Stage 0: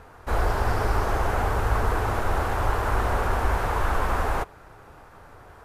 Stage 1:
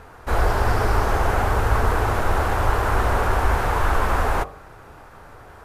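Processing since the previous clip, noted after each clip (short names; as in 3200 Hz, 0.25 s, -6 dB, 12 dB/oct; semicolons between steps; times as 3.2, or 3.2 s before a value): de-hum 46.07 Hz, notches 27; gain +4.5 dB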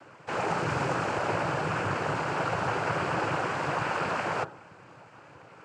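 noise vocoder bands 8; gain -5.5 dB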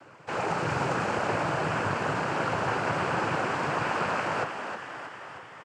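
frequency-shifting echo 0.315 s, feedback 63%, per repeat +80 Hz, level -8 dB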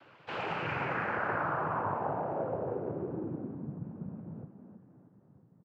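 low-pass sweep 3500 Hz -> 200 Hz, 0.32–3.8; gain -7.5 dB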